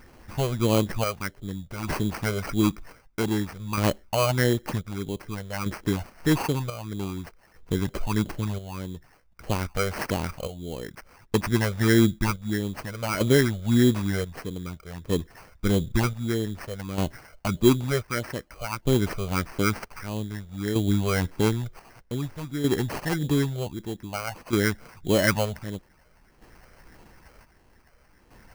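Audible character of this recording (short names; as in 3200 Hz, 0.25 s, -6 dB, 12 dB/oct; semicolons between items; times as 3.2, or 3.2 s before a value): phasing stages 12, 1.6 Hz, lowest notch 280–1500 Hz; chopped level 0.53 Hz, depth 60%, duty 55%; aliases and images of a low sample rate 3600 Hz, jitter 0%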